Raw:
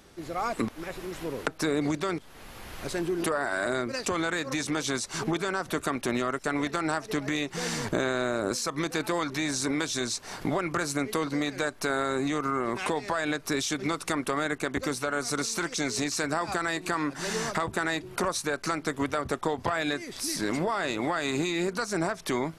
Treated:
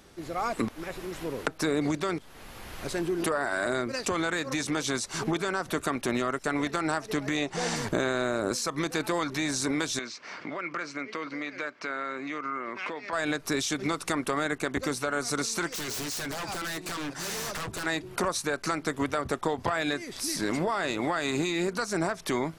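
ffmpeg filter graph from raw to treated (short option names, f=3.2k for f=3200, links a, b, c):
-filter_complex "[0:a]asettb=1/sr,asplit=3[a][b][c];[a]atrim=end=7.364[d];[b]atrim=start=7.36:end=7.76,asetpts=PTS-STARTPTS,afade=t=in:d=0.004:c=qsin,afade=t=out:st=0.396:d=0.004:c=qsin,lowpass=f=9.6k:w=0.5412,lowpass=f=9.6k:w=1.3066,equalizer=f=710:t=o:w=0.88:g=7.5[e];[c]atrim=start=7.756[f];[d][e]acrossfade=d=0.004:c1=hsin:c2=qsin[g];[g][f]acrossfade=d=0.004:c1=qsin:c2=hsin,asettb=1/sr,asplit=3[h][i][j];[h]atrim=end=9.994[k];[i]atrim=start=9.99:end=13.13,asetpts=PTS-STARTPTS,afade=t=in:d=0.004:c=qsin,afade=t=out:st=3.136:d=0.004:c=qsin,acompressor=threshold=-37dB:ratio=1.5:attack=3.2:release=140:knee=1:detection=peak,highpass=270,equalizer=f=400:t=q:w=4:g=-5,equalizer=f=780:t=q:w=4:g=-7,equalizer=f=1.3k:t=q:w=4:g=3,equalizer=f=2.2k:t=q:w=4:g=7,equalizer=f=3.8k:t=q:w=4:g=-6,lowpass=f=5.1k:w=0.5412,lowpass=f=5.1k:w=1.3066[l];[j]atrim=start=13.126[m];[k][l]acrossfade=d=0.004:c1=hsin:c2=qsin[n];[n][m]acrossfade=d=0.004:c1=qsin:c2=hsin,asettb=1/sr,asplit=3[o][p][q];[o]atrim=end=15.714[r];[p]atrim=start=15.71:end=17.86,asetpts=PTS-STARTPTS,afade=t=in:d=0.004:c=qsin,afade=t=out:st=2.146:d=0.004:c=qsin,equalizer=f=5.9k:t=o:w=1.3:g=4,bandreject=f=250:w=6.1,aeval=exprs='0.0355*(abs(mod(val(0)/0.0355+3,4)-2)-1)':c=same[s];[q]atrim=start=17.856[t];[r][s]acrossfade=d=0.004:c1=hsin:c2=qsin[u];[u][t]acrossfade=d=0.004:c1=qsin:c2=hsin"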